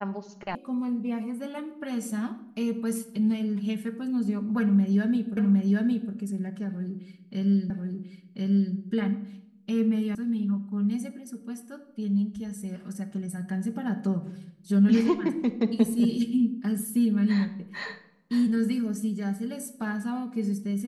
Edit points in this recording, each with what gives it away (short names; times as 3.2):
0.55 sound cut off
5.37 repeat of the last 0.76 s
7.7 repeat of the last 1.04 s
10.15 sound cut off